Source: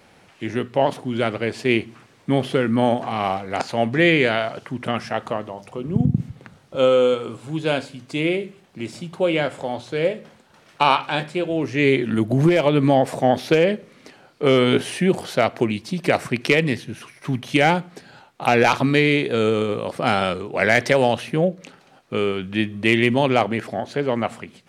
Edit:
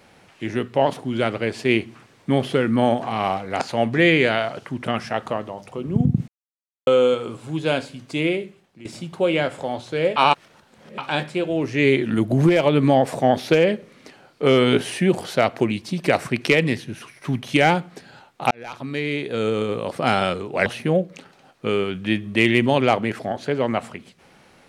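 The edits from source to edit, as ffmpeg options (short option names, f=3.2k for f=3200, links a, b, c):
-filter_complex "[0:a]asplit=8[a][b][c][d][e][f][g][h];[a]atrim=end=6.28,asetpts=PTS-STARTPTS,afade=t=out:st=6.276:d=0.004:c=hsin[i];[b]atrim=start=6.28:end=6.87,asetpts=PTS-STARTPTS,volume=0[j];[c]atrim=start=6.87:end=8.85,asetpts=PTS-STARTPTS,afade=t=in:d=0.004:c=hsin,afade=t=out:st=1.39:d=0.59:silence=0.188365[k];[d]atrim=start=8.85:end=10.162,asetpts=PTS-STARTPTS,afade=t=in:d=0.004:c=hsin:silence=0.188365[l];[e]atrim=start=10.158:end=10.982,asetpts=PTS-STARTPTS,areverse[m];[f]atrim=start=10.978:end=18.51,asetpts=PTS-STARTPTS,afade=t=out:st=7.528:d=0.004:c=hsin[n];[g]atrim=start=18.51:end=20.662,asetpts=PTS-STARTPTS,afade=t=in:d=1.38[o];[h]atrim=start=21.138[p];[i][j][k][l]concat=n=4:v=0:a=1[q];[q][m]acrossfade=d=0.004:c1=hsin:c2=hsin[r];[n][o]concat=n=2:v=0:a=1[s];[r][s]acrossfade=d=0.004:c1=hsin:c2=hsin[t];[t][p]acrossfade=d=0.004:c1=hsin:c2=hsin"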